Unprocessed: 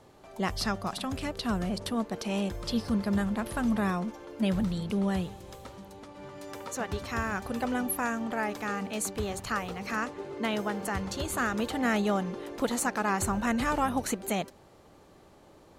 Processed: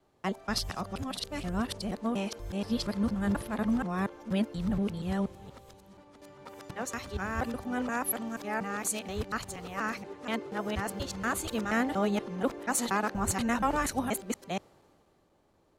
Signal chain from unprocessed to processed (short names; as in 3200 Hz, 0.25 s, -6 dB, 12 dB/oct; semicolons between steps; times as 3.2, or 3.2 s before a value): local time reversal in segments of 0.239 s; three-band expander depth 40%; gain -1.5 dB